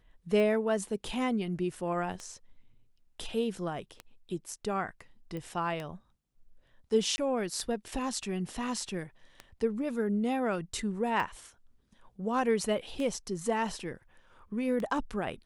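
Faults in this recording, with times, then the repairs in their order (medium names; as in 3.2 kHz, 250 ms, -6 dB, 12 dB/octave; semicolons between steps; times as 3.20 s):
tick 33 1/3 rpm -24 dBFS
5.37 s: pop -27 dBFS
7.16–7.18 s: dropout 20 ms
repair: de-click; interpolate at 7.16 s, 20 ms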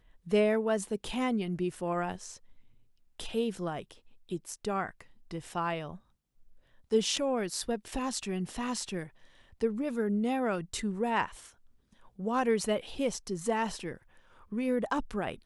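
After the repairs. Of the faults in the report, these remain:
nothing left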